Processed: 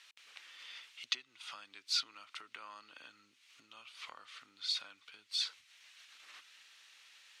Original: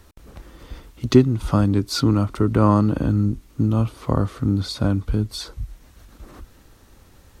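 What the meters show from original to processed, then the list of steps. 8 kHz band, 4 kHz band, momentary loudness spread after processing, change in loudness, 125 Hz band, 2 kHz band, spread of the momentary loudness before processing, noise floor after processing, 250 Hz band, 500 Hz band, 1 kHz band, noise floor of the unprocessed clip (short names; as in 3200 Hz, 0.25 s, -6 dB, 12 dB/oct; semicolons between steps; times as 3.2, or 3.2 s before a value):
-10.0 dB, -4.5 dB, 23 LU, -19.0 dB, under -40 dB, -9.5 dB, 12 LU, -70 dBFS, under -40 dB, under -40 dB, -24.5 dB, -52 dBFS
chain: compressor 5:1, threshold -28 dBFS, peak gain reduction 18.5 dB; ladder band-pass 3200 Hz, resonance 35%; gain +12.5 dB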